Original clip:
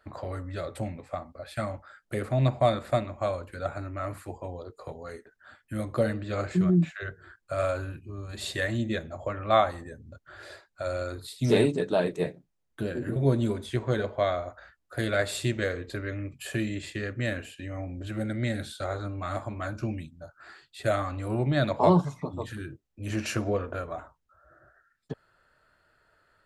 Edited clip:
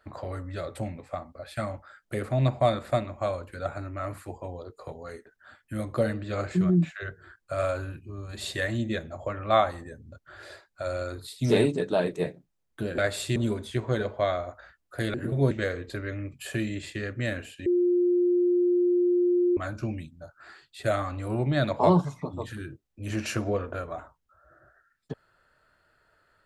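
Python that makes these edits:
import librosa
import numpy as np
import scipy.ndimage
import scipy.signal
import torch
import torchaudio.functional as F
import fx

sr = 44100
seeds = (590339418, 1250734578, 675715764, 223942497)

y = fx.edit(x, sr, fx.swap(start_s=12.98, length_s=0.37, other_s=15.13, other_length_s=0.38),
    fx.bleep(start_s=17.66, length_s=1.91, hz=354.0, db=-19.5), tone=tone)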